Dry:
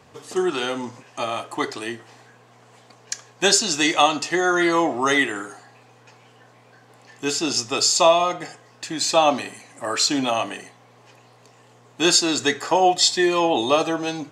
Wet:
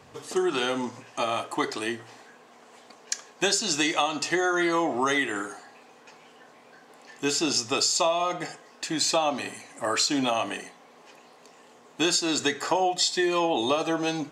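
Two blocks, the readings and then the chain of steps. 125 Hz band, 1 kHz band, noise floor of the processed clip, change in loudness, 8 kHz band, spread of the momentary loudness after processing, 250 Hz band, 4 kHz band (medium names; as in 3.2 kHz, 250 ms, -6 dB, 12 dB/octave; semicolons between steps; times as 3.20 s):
-4.5 dB, -6.0 dB, -54 dBFS, -5.5 dB, -5.0 dB, 11 LU, -4.0 dB, -5.0 dB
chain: hum notches 60/120/180 Hz; compression 6:1, threshold -21 dBFS, peak gain reduction 10.5 dB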